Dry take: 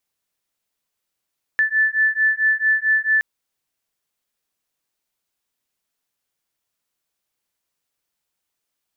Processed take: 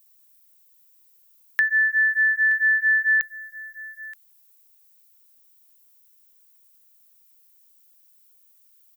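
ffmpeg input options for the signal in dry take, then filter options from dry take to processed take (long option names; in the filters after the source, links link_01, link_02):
-f lavfi -i "aevalsrc='0.119*(sin(2*PI*1750*t)+sin(2*PI*1754.5*t))':duration=1.62:sample_rate=44100"
-af "aemphasis=mode=production:type=riaa,acompressor=threshold=-17dB:ratio=6,aecho=1:1:925:0.119"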